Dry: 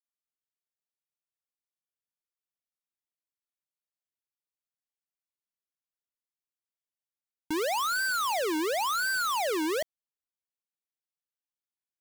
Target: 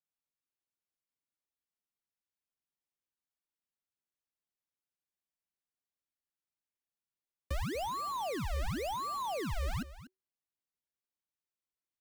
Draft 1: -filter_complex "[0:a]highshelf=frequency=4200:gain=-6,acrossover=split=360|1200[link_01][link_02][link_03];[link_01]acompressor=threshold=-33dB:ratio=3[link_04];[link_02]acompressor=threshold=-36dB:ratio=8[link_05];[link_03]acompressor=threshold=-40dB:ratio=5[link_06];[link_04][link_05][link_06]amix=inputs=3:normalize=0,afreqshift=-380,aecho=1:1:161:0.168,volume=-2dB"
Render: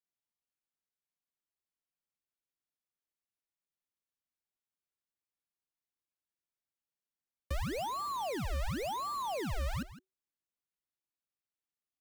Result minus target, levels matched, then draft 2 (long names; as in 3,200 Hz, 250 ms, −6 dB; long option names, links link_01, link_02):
echo 81 ms early
-filter_complex "[0:a]highshelf=frequency=4200:gain=-6,acrossover=split=360|1200[link_01][link_02][link_03];[link_01]acompressor=threshold=-33dB:ratio=3[link_04];[link_02]acompressor=threshold=-36dB:ratio=8[link_05];[link_03]acompressor=threshold=-40dB:ratio=5[link_06];[link_04][link_05][link_06]amix=inputs=3:normalize=0,afreqshift=-380,aecho=1:1:242:0.168,volume=-2dB"